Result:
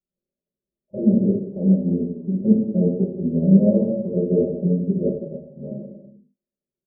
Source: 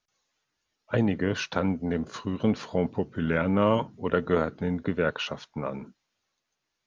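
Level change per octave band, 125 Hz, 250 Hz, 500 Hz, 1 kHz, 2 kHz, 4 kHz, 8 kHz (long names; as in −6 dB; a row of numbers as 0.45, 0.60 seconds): +8.5 dB, +10.0 dB, +4.0 dB, below −20 dB, below −40 dB, below −40 dB, can't be measured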